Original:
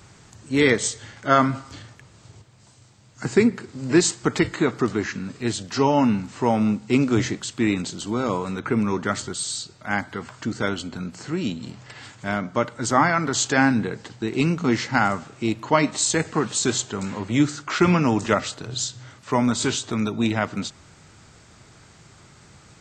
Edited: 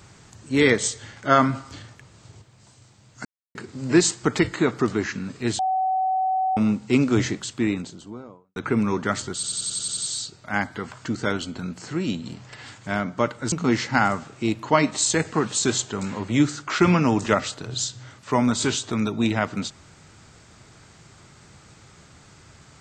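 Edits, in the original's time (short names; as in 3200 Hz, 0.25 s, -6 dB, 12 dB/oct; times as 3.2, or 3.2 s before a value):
3.25–3.55 mute
5.59–6.57 bleep 755 Hz -19.5 dBFS
7.32–8.56 studio fade out
9.34 stutter 0.09 s, 8 plays
12.89–14.52 cut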